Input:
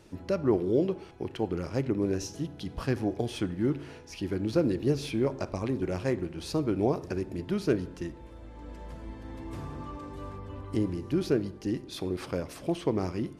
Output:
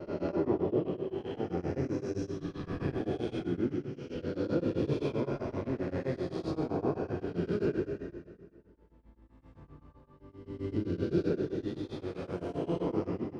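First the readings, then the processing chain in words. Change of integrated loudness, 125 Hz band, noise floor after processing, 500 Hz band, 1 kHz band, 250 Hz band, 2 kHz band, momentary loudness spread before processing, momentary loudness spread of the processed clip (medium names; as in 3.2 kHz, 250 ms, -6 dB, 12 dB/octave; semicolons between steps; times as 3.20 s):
-3.0 dB, -3.5 dB, -61 dBFS, -3.0 dB, -3.0 dB, -3.5 dB, -4.5 dB, 14 LU, 8 LU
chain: reverse spectral sustain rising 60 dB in 2.42 s; expander -27 dBFS; tape spacing loss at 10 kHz 21 dB; plate-style reverb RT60 1.8 s, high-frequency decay 0.8×, DRR 0.5 dB; tremolo of two beating tones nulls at 7.7 Hz; trim -7 dB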